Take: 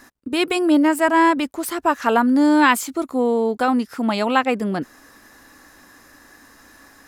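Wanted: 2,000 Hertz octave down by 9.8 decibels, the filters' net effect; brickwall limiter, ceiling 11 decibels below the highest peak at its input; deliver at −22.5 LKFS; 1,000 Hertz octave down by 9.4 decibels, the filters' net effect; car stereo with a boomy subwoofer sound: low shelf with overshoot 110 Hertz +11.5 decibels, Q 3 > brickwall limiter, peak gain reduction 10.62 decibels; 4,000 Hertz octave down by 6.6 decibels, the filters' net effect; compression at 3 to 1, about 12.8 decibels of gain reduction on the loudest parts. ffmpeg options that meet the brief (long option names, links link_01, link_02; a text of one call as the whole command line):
ffmpeg -i in.wav -af "equalizer=frequency=1000:width_type=o:gain=-9,equalizer=frequency=2000:width_type=o:gain=-8.5,equalizer=frequency=4000:width_type=o:gain=-4.5,acompressor=threshold=-32dB:ratio=3,alimiter=level_in=7dB:limit=-24dB:level=0:latency=1,volume=-7dB,lowshelf=frequency=110:width_type=q:width=3:gain=11.5,volume=26dB,alimiter=limit=-14.5dB:level=0:latency=1" out.wav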